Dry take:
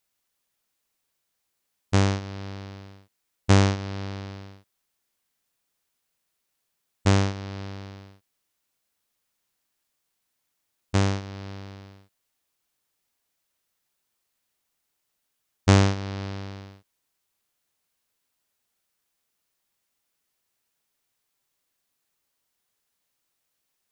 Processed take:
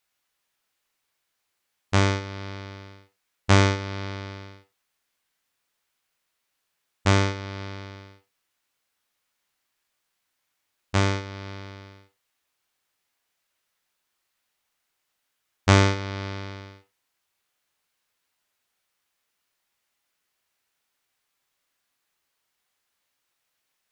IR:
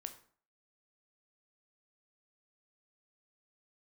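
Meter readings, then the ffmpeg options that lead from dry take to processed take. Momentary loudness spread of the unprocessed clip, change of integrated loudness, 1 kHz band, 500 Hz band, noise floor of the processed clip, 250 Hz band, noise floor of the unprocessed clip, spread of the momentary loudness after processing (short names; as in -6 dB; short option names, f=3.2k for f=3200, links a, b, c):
21 LU, +0.5 dB, +3.0 dB, +1.5 dB, -78 dBFS, -1.0 dB, -78 dBFS, 20 LU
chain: -filter_complex "[0:a]equalizer=f=1.8k:w=0.37:g=7[a];[1:a]atrim=start_sample=2205,afade=t=out:st=0.22:d=0.01,atrim=end_sample=10143,asetrate=61740,aresample=44100[b];[a][b]afir=irnorm=-1:irlink=0,volume=4.5dB"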